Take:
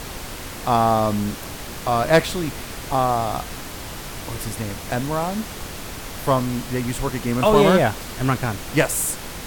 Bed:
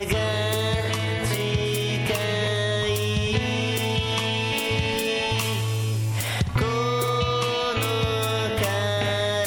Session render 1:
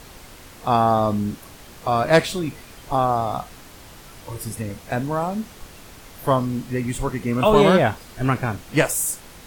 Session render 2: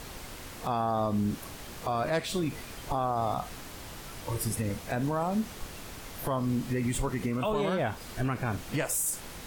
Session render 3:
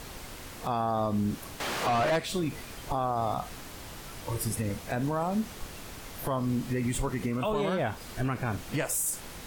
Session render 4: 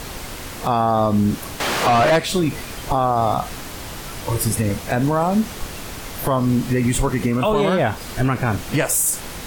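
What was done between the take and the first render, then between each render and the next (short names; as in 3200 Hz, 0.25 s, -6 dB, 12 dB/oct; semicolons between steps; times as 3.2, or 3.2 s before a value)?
noise print and reduce 10 dB
compressor 6:1, threshold -23 dBFS, peak gain reduction 12.5 dB; limiter -20.5 dBFS, peak gain reduction 8 dB
1.6–2.16 overdrive pedal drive 28 dB, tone 2600 Hz, clips at -20 dBFS
gain +11 dB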